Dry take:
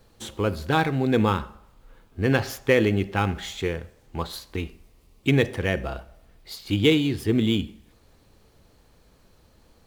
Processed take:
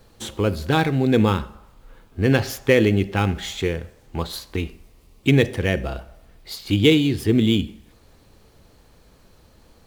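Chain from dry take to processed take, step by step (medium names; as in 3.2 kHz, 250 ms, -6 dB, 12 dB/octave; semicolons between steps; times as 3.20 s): dynamic bell 1.1 kHz, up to -5 dB, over -38 dBFS, Q 0.86; trim +4.5 dB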